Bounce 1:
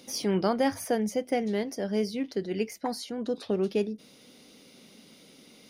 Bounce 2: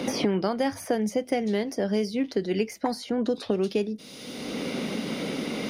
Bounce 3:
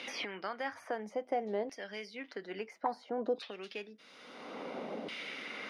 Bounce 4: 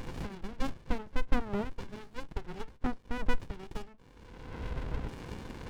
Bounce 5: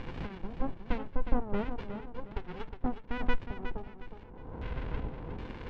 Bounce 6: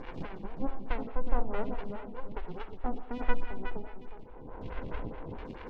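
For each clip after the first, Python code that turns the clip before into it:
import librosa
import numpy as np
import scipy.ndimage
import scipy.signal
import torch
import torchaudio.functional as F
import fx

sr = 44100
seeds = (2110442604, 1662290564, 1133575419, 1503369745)

y1 = fx.high_shelf(x, sr, hz=11000.0, db=-6.0)
y1 = fx.band_squash(y1, sr, depth_pct=100)
y1 = y1 * 10.0 ** (2.0 / 20.0)
y2 = fx.filter_lfo_bandpass(y1, sr, shape='saw_down', hz=0.59, low_hz=630.0, high_hz=2600.0, q=1.6)
y2 = y2 * 10.0 ** (-1.5 / 20.0)
y3 = fx.vowel_filter(y2, sr, vowel='e')
y3 = fx.running_max(y3, sr, window=65)
y3 = y3 * 10.0 ** (18.0 / 20.0)
y4 = fx.filter_lfo_lowpass(y3, sr, shape='square', hz=1.3, low_hz=850.0, high_hz=3000.0, q=1.1)
y4 = fx.echo_feedback(y4, sr, ms=362, feedback_pct=33, wet_db=-8.5)
y5 = fx.rev_freeverb(y4, sr, rt60_s=0.68, hf_ratio=0.8, predelay_ms=25, drr_db=7.0)
y5 = fx.stagger_phaser(y5, sr, hz=4.7)
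y5 = y5 * 10.0 ** (2.0 / 20.0)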